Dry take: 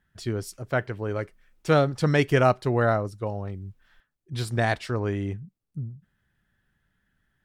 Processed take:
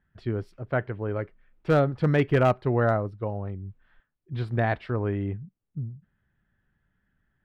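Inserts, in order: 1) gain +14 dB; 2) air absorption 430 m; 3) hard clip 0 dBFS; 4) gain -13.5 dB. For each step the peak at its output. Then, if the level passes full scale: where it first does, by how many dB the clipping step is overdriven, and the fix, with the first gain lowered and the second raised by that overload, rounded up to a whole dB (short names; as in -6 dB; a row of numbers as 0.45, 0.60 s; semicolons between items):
+6.0, +4.5, 0.0, -13.5 dBFS; step 1, 4.5 dB; step 1 +9 dB, step 4 -8.5 dB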